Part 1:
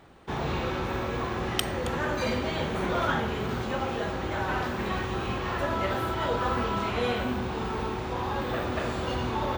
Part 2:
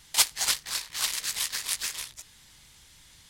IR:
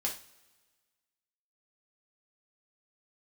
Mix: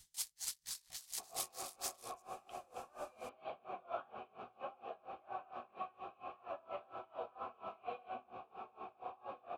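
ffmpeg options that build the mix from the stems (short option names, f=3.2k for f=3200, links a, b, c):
-filter_complex "[0:a]lowpass=f=4k:p=1,flanger=delay=8:depth=9.2:regen=61:speed=1.8:shape=sinusoidal,asplit=3[a][b][c];[a]bandpass=f=730:t=q:w=8,volume=0dB[d];[b]bandpass=f=1.09k:t=q:w=8,volume=-6dB[e];[c]bandpass=f=2.44k:t=q:w=8,volume=-9dB[f];[d][e][f]amix=inputs=3:normalize=0,adelay=900,volume=2dB[g];[1:a]bass=f=250:g=6,treble=f=4k:g=12,acrossover=split=1500|3200[h][i][j];[h]acompressor=threshold=-46dB:ratio=4[k];[i]acompressor=threshold=-40dB:ratio=4[l];[j]acompressor=threshold=-22dB:ratio=4[m];[k][l][m]amix=inputs=3:normalize=0,volume=-14.5dB[n];[g][n]amix=inputs=2:normalize=0,aeval=exprs='val(0)*pow(10,-25*(0.5-0.5*cos(2*PI*4.3*n/s))/20)':c=same"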